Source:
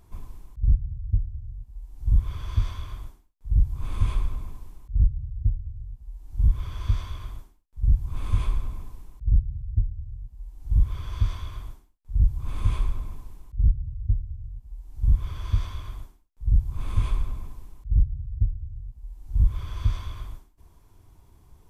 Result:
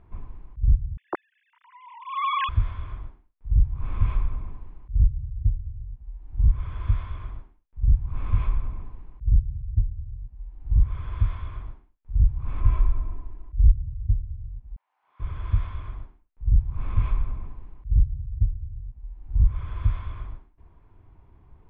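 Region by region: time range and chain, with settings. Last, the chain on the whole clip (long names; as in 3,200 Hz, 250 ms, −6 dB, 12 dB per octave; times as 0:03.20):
0:00.97–0:02.49: three sine waves on the formant tracks + downward compressor 3 to 1, threshold −23 dBFS
0:12.60–0:13.76: high-shelf EQ 2,400 Hz −8 dB + comb filter 3 ms, depth 59%
0:14.76–0:15.20: high-pass filter 790 Hz 24 dB per octave + micro pitch shift up and down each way 54 cents
whole clip: low-pass filter 2,500 Hz 24 dB per octave; dynamic equaliser 340 Hz, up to −4 dB, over −44 dBFS, Q 1.2; level +1 dB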